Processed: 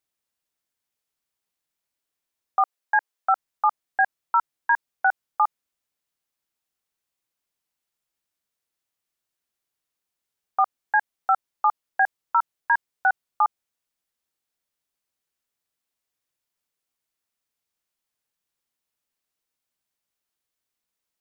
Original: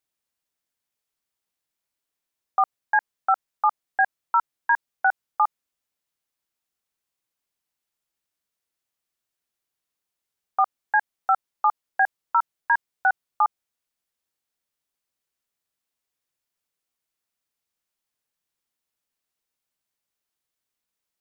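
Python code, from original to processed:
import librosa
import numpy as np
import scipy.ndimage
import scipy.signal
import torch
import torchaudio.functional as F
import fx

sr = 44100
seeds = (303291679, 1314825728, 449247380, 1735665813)

y = fx.highpass(x, sr, hz=360.0, slope=12, at=(2.61, 3.29))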